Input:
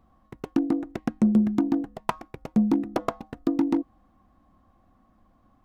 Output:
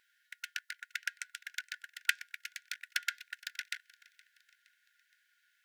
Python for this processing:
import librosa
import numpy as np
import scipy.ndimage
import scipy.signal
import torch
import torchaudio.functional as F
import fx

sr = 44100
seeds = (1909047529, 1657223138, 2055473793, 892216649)

p1 = fx.brickwall_highpass(x, sr, low_hz=1400.0)
p2 = p1 + fx.echo_feedback(p1, sr, ms=468, feedback_pct=49, wet_db=-23.0, dry=0)
y = F.gain(torch.from_numpy(p2), 8.5).numpy()